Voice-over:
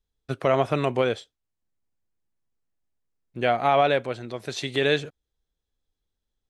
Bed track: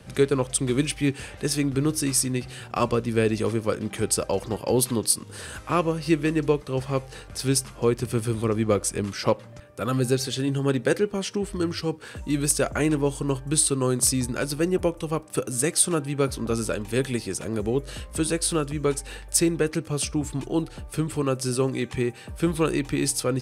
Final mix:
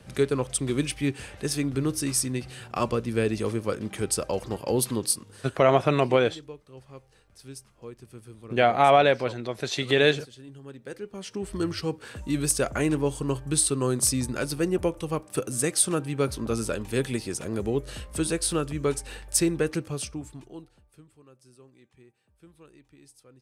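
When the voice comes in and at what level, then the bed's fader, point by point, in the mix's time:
5.15 s, +2.0 dB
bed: 0:05.10 −3 dB
0:05.73 −20 dB
0:10.77 −20 dB
0:11.55 −2 dB
0:19.80 −2 dB
0:21.17 −30 dB

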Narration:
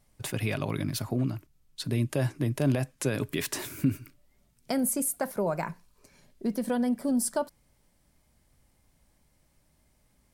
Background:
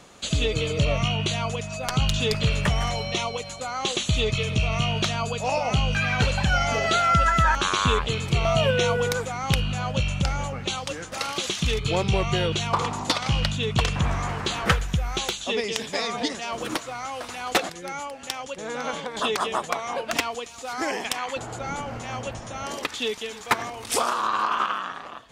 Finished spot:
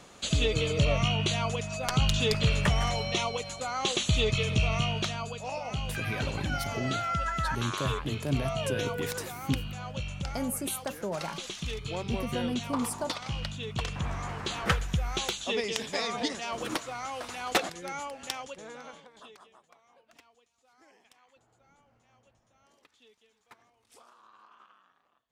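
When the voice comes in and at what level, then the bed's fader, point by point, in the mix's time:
5.65 s, −5.5 dB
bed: 0:04.67 −2.5 dB
0:05.46 −11 dB
0:13.67 −11 dB
0:15.00 −4 dB
0:18.35 −4 dB
0:19.58 −33.5 dB

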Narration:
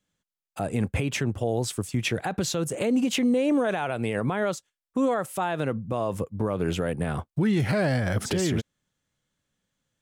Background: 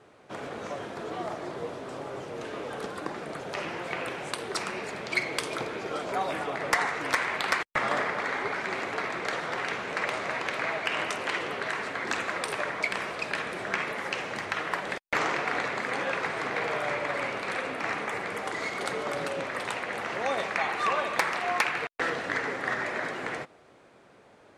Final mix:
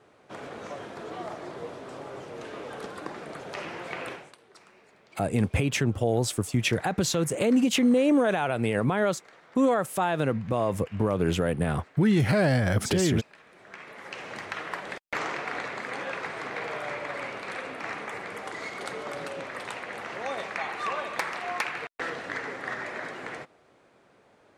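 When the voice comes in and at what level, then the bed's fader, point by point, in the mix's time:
4.60 s, +1.5 dB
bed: 0:04.13 −2.5 dB
0:04.37 −22.5 dB
0:13.39 −22.5 dB
0:14.31 −4 dB

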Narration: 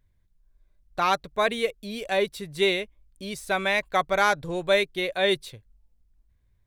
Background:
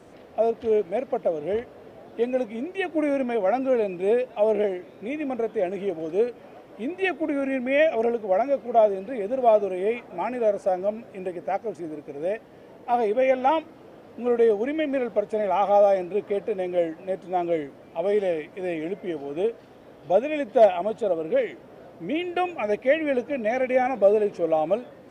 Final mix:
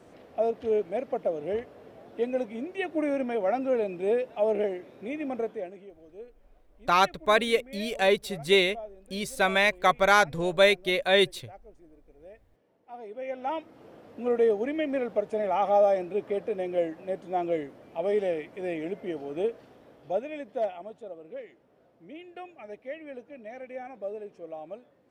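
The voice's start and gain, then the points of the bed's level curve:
5.90 s, +1.5 dB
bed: 0:05.44 −4 dB
0:05.92 −22 dB
0:12.88 −22 dB
0:13.85 −3.5 dB
0:19.58 −3.5 dB
0:21.12 −17.5 dB

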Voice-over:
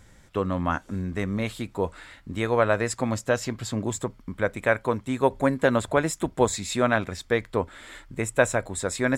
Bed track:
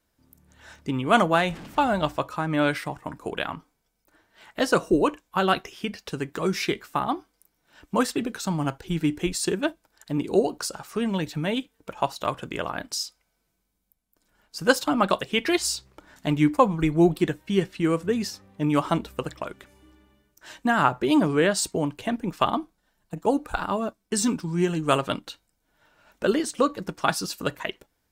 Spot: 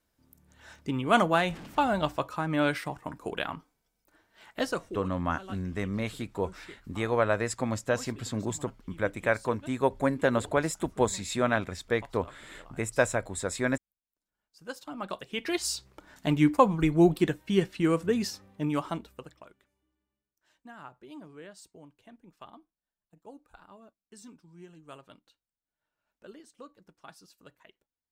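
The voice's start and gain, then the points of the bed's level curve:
4.60 s, −4.0 dB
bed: 0:04.57 −3.5 dB
0:05.03 −23 dB
0:14.53 −23 dB
0:15.86 −2 dB
0:18.43 −2 dB
0:19.93 −26 dB

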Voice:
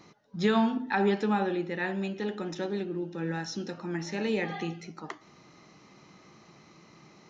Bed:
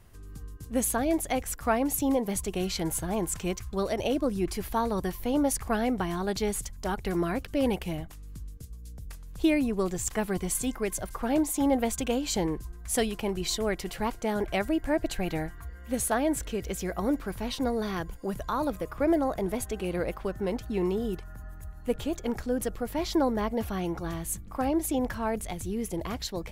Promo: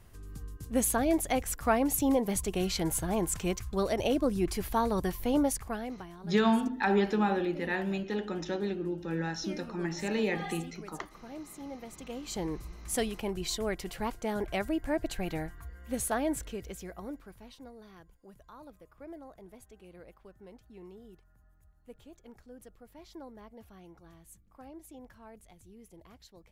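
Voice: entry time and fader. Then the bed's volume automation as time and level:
5.90 s, −0.5 dB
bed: 0:05.38 −0.5 dB
0:06.19 −18 dB
0:11.88 −18 dB
0:12.55 −4 dB
0:16.31 −4 dB
0:17.73 −21.5 dB

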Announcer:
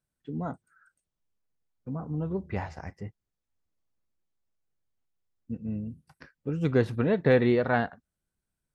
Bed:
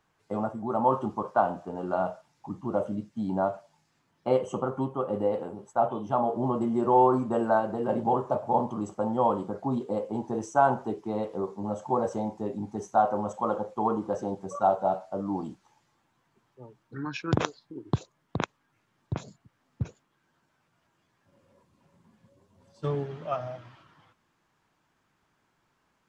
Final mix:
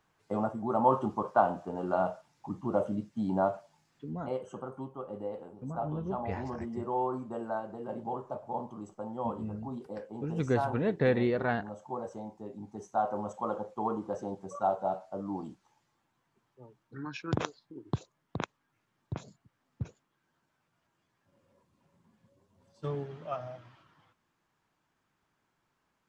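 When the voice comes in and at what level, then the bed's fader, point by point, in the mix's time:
3.75 s, −5.0 dB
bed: 0:04.09 −1 dB
0:04.29 −11 dB
0:12.45 −11 dB
0:13.18 −5.5 dB

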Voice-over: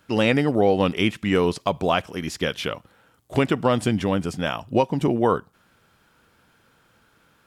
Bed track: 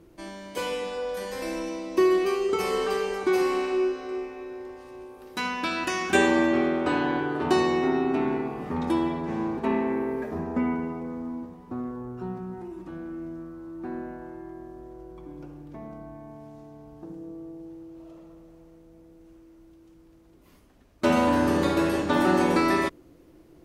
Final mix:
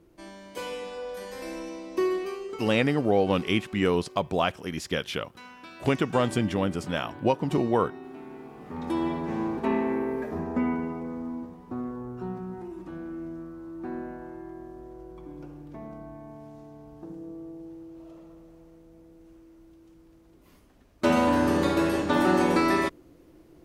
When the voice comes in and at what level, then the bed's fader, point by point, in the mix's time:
2.50 s, −4.0 dB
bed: 0:02.04 −5 dB
0:02.93 −17.5 dB
0:08.25 −17.5 dB
0:09.10 −0.5 dB

